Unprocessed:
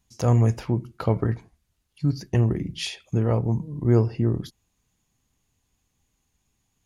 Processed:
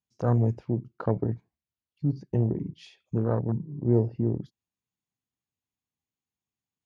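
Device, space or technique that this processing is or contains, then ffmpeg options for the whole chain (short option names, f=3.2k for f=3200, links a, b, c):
over-cleaned archive recording: -af "highpass=110,lowpass=5.8k,afwtdn=0.0398,volume=-2.5dB"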